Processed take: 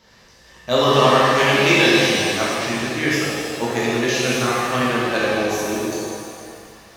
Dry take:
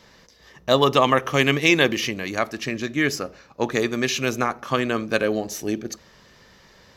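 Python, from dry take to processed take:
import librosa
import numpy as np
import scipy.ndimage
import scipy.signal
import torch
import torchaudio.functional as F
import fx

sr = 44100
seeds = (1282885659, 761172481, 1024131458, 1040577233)

y = fx.rev_shimmer(x, sr, seeds[0], rt60_s=2.1, semitones=7, shimmer_db=-8, drr_db=-7.5)
y = y * 10.0 ** (-4.5 / 20.0)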